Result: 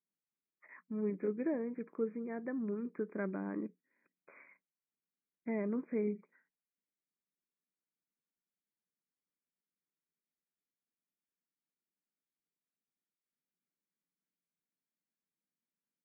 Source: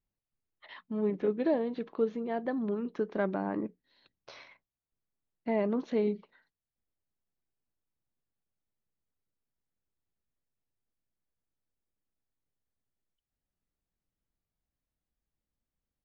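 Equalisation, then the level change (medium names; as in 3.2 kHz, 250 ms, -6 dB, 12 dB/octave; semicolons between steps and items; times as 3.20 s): brick-wall FIR band-pass 150–2500 Hz; peaking EQ 760 Hz -11 dB 0.9 oct; -4.0 dB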